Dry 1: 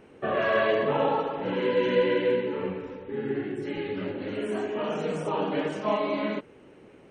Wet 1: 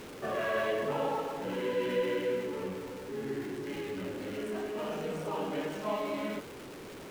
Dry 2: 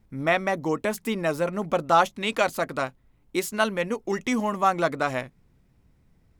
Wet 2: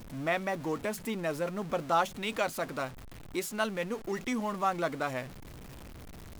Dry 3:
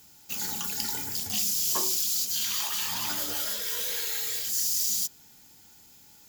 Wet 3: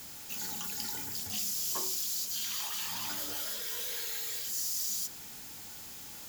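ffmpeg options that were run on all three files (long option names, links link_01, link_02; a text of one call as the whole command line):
ffmpeg -i in.wav -af "aeval=exprs='val(0)+0.5*0.0237*sgn(val(0))':channel_layout=same,volume=-8.5dB" out.wav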